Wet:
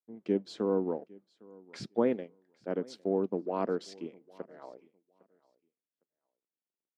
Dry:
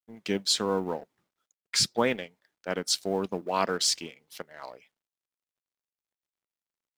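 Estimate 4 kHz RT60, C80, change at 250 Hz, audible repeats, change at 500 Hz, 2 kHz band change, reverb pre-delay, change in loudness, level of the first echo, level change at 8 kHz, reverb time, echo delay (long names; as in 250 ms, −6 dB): no reverb audible, no reverb audible, +0.5 dB, 1, −0.5 dB, −14.5 dB, no reverb audible, −5.0 dB, −24.0 dB, below −25 dB, no reverb audible, 807 ms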